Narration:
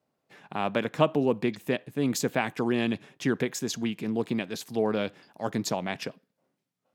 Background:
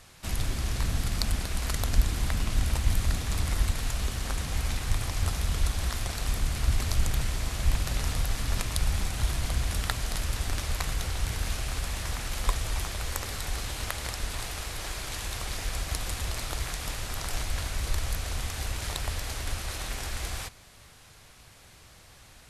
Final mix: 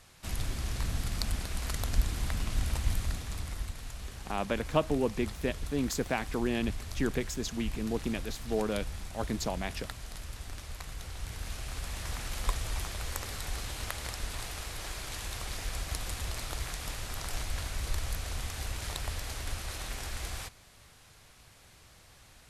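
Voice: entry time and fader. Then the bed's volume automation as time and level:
3.75 s, −4.5 dB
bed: 0:02.87 −4.5 dB
0:03.73 −12 dB
0:10.85 −12 dB
0:12.17 −4 dB

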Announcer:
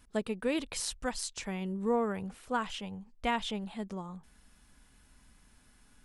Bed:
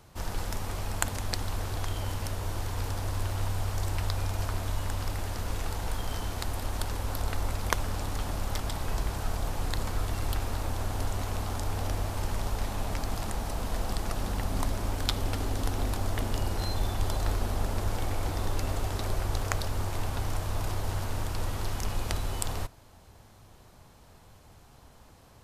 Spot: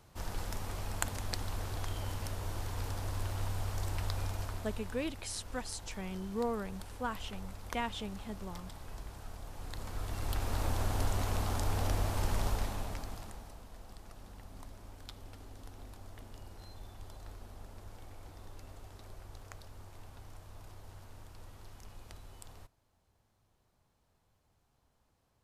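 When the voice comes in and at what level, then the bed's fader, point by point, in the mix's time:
4.50 s, −5.0 dB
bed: 0:04.26 −5.5 dB
0:05.10 −15 dB
0:09.47 −15 dB
0:10.63 −1 dB
0:12.49 −1 dB
0:13.68 −20 dB

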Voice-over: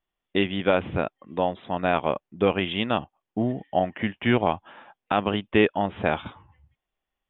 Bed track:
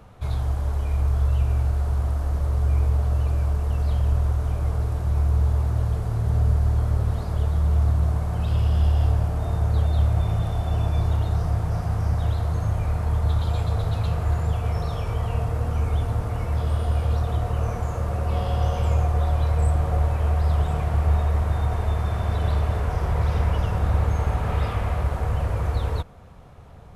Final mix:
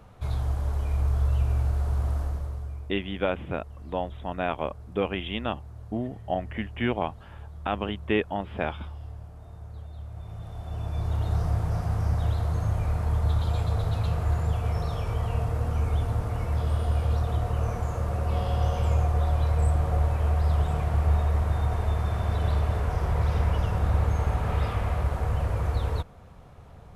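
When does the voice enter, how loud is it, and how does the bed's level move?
2.55 s, −5.5 dB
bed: 0:02.20 −3 dB
0:02.90 −20 dB
0:10.04 −20 dB
0:11.34 −2.5 dB

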